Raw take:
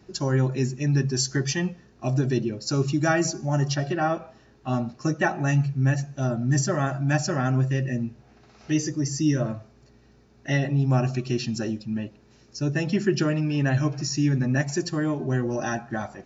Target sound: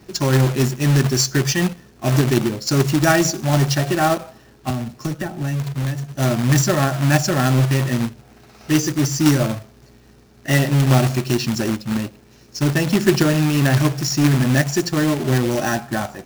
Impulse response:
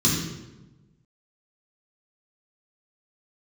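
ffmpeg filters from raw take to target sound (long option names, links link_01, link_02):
-filter_complex "[0:a]acrusher=bits=2:mode=log:mix=0:aa=0.000001,asettb=1/sr,asplit=3[link_01][link_02][link_03];[link_01]atrim=end=4.704[link_04];[link_02]atrim=start=4.7:end=6.15,asetpts=PTS-STARTPTS,afade=type=in:duration=0.004:curve=qsin,afade=type=out:start_time=1.446:duration=0.004:curve=qsin,acrossover=split=150|470[link_05][link_06][link_07];[link_05]acompressor=threshold=-32dB:ratio=4[link_08];[link_06]acompressor=threshold=-35dB:ratio=4[link_09];[link_07]acompressor=threshold=-40dB:ratio=4[link_10];[link_08][link_09][link_10]amix=inputs=3:normalize=0[link_11];[link_03]atrim=start=6.146[link_12];[link_04][link_11]acrossfade=duration=0.004:curve1=hsin:curve2=qsin[link_13];[link_13][link_12]acrossfade=duration=0.004:curve1=qsin:curve2=hsin,volume=6.5dB"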